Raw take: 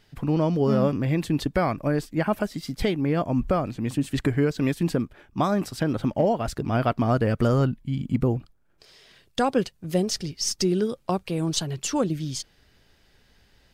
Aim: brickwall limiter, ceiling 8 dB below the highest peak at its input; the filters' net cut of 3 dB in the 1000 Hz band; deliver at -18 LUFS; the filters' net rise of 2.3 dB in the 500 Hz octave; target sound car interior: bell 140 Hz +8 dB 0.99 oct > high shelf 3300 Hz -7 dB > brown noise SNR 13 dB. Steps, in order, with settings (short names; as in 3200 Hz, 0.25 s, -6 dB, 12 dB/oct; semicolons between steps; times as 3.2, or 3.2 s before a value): bell 500 Hz +4 dB; bell 1000 Hz -6 dB; limiter -17.5 dBFS; bell 140 Hz +8 dB 0.99 oct; high shelf 3300 Hz -7 dB; brown noise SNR 13 dB; gain +6.5 dB